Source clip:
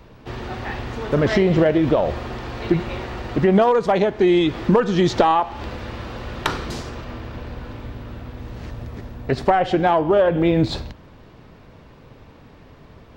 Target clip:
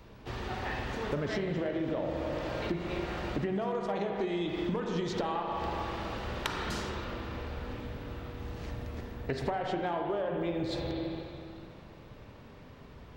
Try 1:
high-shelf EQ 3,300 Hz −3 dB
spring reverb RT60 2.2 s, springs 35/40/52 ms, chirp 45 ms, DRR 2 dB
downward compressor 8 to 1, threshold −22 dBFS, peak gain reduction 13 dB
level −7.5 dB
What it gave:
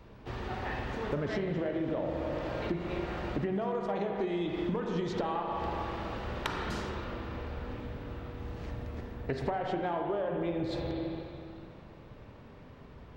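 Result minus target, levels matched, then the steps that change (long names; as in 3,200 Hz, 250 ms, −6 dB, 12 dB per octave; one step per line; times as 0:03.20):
8,000 Hz band −5.5 dB
change: high-shelf EQ 3,300 Hz +4.5 dB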